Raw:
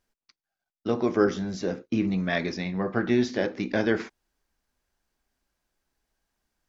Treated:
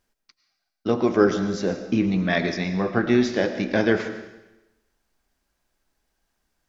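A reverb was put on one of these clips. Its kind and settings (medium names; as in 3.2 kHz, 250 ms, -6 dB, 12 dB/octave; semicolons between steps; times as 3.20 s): algorithmic reverb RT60 0.99 s, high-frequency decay 1×, pre-delay 65 ms, DRR 9.5 dB; trim +4 dB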